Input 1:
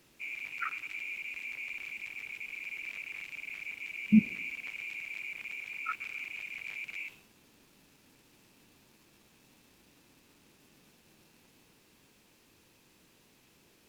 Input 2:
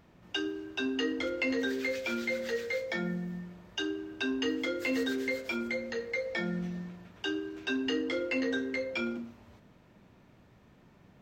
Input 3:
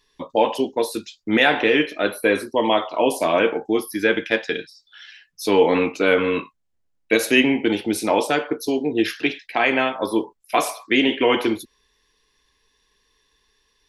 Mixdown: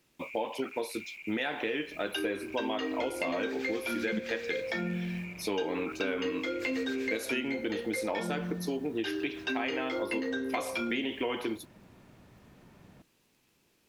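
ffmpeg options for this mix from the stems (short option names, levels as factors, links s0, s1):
-filter_complex "[0:a]volume=0.501[s0];[1:a]highshelf=f=10000:g=-10,adelay=1800,volume=1.41[s1];[2:a]acrusher=bits=8:mix=0:aa=0.000001,volume=0.398[s2];[s0][s1][s2]amix=inputs=3:normalize=0,acompressor=threshold=0.0355:ratio=6"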